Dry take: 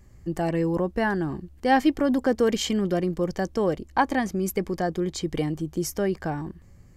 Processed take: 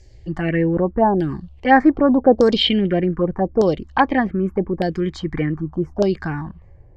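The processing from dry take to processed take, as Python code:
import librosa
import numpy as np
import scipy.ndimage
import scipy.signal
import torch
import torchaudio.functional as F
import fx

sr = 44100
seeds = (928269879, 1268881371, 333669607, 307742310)

y = fx.filter_lfo_lowpass(x, sr, shape='saw_down', hz=0.83, low_hz=610.0, high_hz=5500.0, q=2.4)
y = fx.env_phaser(y, sr, low_hz=190.0, high_hz=3000.0, full_db=-16.0)
y = y * 10.0 ** (7.0 / 20.0)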